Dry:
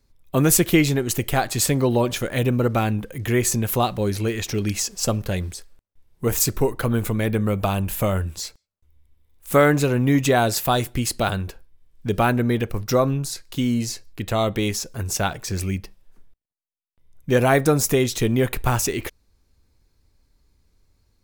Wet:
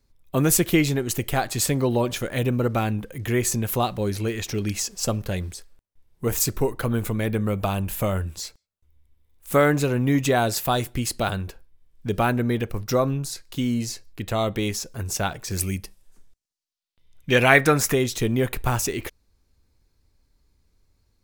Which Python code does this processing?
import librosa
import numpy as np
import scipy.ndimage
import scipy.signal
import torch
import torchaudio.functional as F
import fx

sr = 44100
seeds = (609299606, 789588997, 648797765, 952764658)

y = fx.peak_eq(x, sr, hz=fx.line((15.5, 14000.0), (17.92, 1600.0)), db=13.0, octaves=1.5, at=(15.5, 17.92), fade=0.02)
y = y * librosa.db_to_amplitude(-2.5)